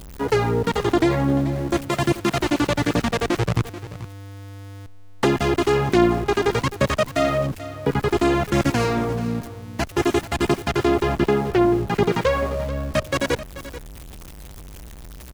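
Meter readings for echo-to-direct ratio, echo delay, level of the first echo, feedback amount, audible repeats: -14.5 dB, 0.435 s, -14.5 dB, no steady repeat, 1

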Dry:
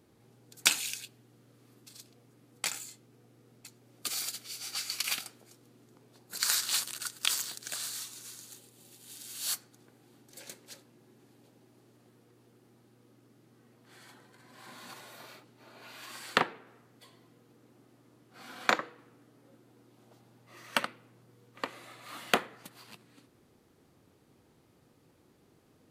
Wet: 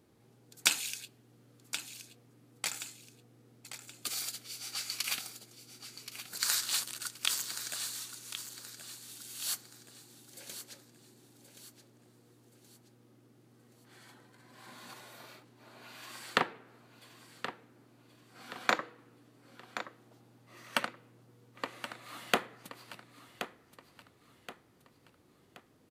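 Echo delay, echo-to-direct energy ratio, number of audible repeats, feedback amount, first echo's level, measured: 1.075 s, -10.5 dB, 3, 39%, -11.0 dB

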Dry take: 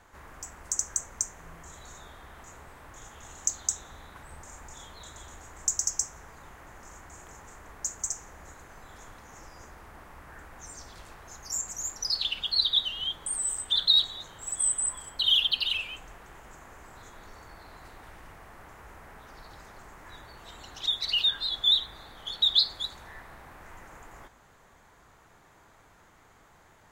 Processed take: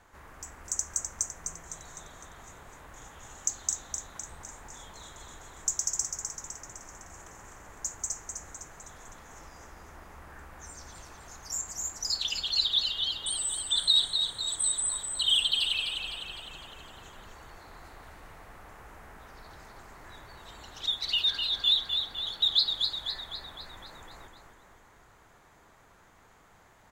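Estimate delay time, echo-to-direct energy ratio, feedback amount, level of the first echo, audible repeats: 0.254 s, -4.5 dB, 54%, -6.0 dB, 6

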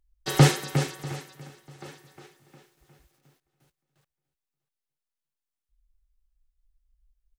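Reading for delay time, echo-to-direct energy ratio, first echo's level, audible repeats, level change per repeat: 0.643 s, -20.5 dB, -21.0 dB, 2, -12.0 dB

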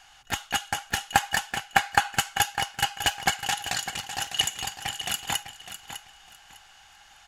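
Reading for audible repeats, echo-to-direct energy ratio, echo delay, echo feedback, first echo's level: 2, -11.0 dB, 0.603 s, 22%, -11.0 dB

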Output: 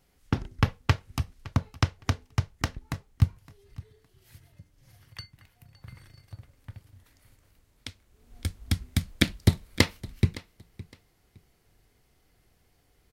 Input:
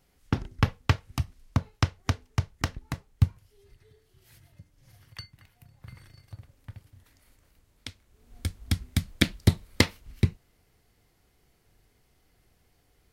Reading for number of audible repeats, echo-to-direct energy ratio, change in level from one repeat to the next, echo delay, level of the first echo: 2, -19.5 dB, -13.0 dB, 0.563 s, -19.5 dB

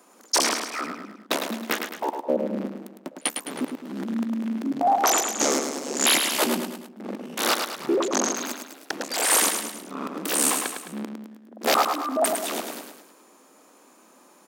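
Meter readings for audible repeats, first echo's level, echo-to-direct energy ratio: 4, -6.0 dB, -5.0 dB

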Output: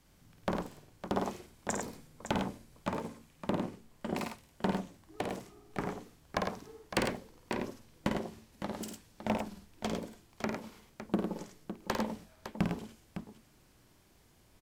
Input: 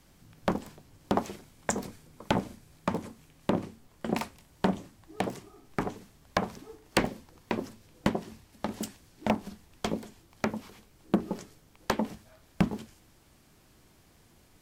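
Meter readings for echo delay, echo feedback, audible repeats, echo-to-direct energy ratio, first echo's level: 51 ms, no steady repeat, 3, -1.5 dB, -5.0 dB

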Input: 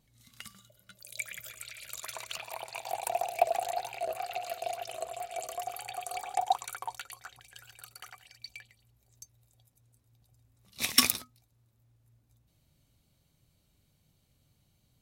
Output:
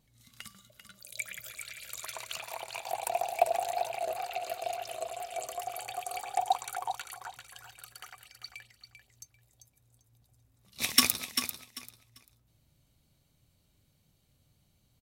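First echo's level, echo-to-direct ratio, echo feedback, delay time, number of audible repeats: -8.5 dB, -8.5 dB, 21%, 0.393 s, 2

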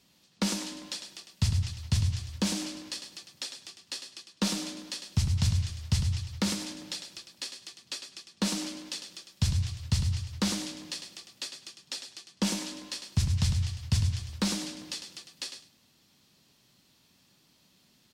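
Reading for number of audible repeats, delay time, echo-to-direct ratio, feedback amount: 2, 0.103 s, -8.0 dB, 16%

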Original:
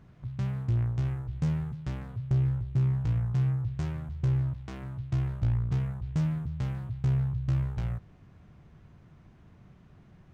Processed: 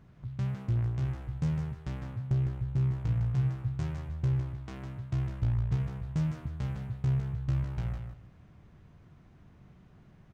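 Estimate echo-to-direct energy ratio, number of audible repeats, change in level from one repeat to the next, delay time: -7.0 dB, 2, -13.5 dB, 0.156 s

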